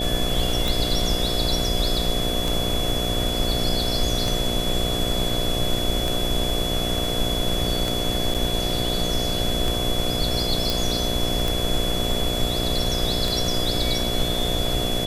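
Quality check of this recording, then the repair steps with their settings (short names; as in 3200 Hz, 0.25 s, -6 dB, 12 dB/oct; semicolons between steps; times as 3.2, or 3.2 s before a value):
buzz 60 Hz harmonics 12 -28 dBFS
tick 33 1/3 rpm
tone 3400 Hz -27 dBFS
8.34–8.35 gap 7.4 ms
10.7 pop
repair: de-click; de-hum 60 Hz, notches 12; notch 3400 Hz, Q 30; interpolate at 8.34, 7.4 ms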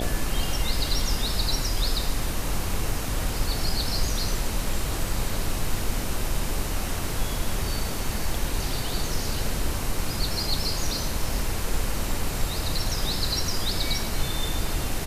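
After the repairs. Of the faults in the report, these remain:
none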